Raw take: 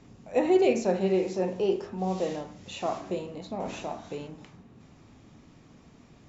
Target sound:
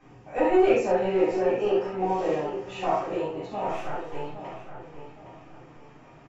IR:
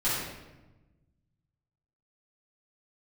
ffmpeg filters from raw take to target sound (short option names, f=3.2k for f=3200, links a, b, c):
-filter_complex "[0:a]asettb=1/sr,asplit=3[a][b][c];[a]atrim=end=3.704[d];[b]atrim=start=3.7:end=4.37,asetpts=PTS-STARTPTS,afade=t=in:d=0.004:c=qsin,afade=t=out:st=0.666:d=0.004:c=qsin,aeval=exprs='max(val(0),0)':c=same[e];[c]atrim=start=4.366[f];[d][e]acrossfade=d=0.004:c1=hsin:c2=qsin[g];[g][f]acrossfade=d=0.004:c1=qsin:c2=hsin,asplit=2[h][i];[i]highpass=f=720:p=1,volume=14dB,asoftclip=type=tanh:threshold=-11.5dB[j];[h][j]amix=inputs=2:normalize=0,lowpass=f=1.3k:p=1,volume=-6dB,equalizer=f=200:t=o:w=0.33:g=-9,equalizer=f=2.5k:t=o:w=0.33:g=3,equalizer=f=4k:t=o:w=0.33:g=-8,asplit=2[k][l];[l]adelay=816,lowpass=f=3.6k:p=1,volume=-10dB,asplit=2[m][n];[n]adelay=816,lowpass=f=3.6k:p=1,volume=0.35,asplit=2[o][p];[p]adelay=816,lowpass=f=3.6k:p=1,volume=0.35,asplit=2[q][r];[r]adelay=816,lowpass=f=3.6k:p=1,volume=0.35[s];[k][m][o][q][s]amix=inputs=5:normalize=0[t];[1:a]atrim=start_sample=2205,atrim=end_sample=3969[u];[t][u]afir=irnorm=-1:irlink=0,volume=-7dB"